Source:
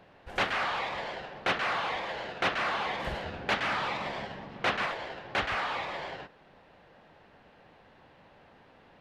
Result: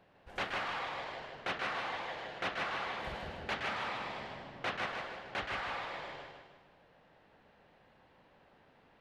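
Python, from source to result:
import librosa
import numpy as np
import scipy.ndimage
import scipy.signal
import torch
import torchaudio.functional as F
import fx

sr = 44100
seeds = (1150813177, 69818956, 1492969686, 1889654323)

y = fx.echo_feedback(x, sr, ms=154, feedback_pct=43, wet_db=-4.0)
y = y * librosa.db_to_amplitude(-8.5)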